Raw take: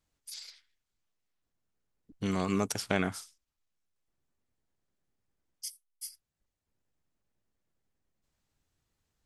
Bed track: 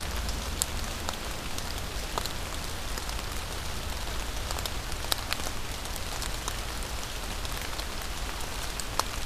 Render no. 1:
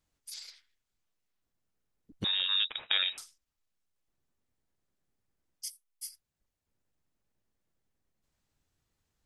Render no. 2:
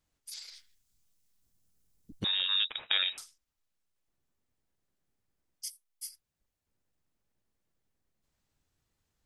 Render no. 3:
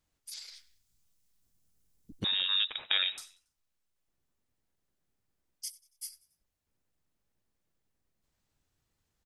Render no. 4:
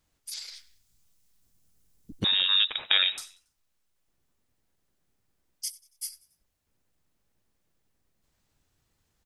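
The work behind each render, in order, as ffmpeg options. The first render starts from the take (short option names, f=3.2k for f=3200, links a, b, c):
-filter_complex "[0:a]asettb=1/sr,asplit=3[a][b][c];[a]atrim=end=2.244[d];[b]atrim=start=2.24:end=3.18,asetpts=PTS-STARTPTS,afade=t=in:d=0.004:c=qsin,afade=t=out:st=0.936:d=0.004:c=qsin,lowpass=f=3.3k:t=q:w=0.5098,lowpass=f=3.3k:t=q:w=0.6013,lowpass=f=3.3k:t=q:w=0.9,lowpass=f=3.3k:t=q:w=2.563,afreqshift=-3900[e];[c]atrim=start=3.176[f];[d][e]acrossfade=d=0.004:c1=hsin:c2=qsin[g];[g][f]acrossfade=d=0.004:c1=qsin:c2=hsin"
-filter_complex "[0:a]asplit=3[a][b][c];[a]afade=t=out:st=0.51:d=0.02[d];[b]bass=f=250:g=10,treble=f=4k:g=13,afade=t=in:st=0.51:d=0.02,afade=t=out:st=2.19:d=0.02[e];[c]afade=t=in:st=2.19:d=0.02[f];[d][e][f]amix=inputs=3:normalize=0"
-filter_complex "[0:a]asplit=4[a][b][c][d];[b]adelay=93,afreqshift=54,volume=-22dB[e];[c]adelay=186,afreqshift=108,volume=-28.9dB[f];[d]adelay=279,afreqshift=162,volume=-35.9dB[g];[a][e][f][g]amix=inputs=4:normalize=0"
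-af "volume=6dB"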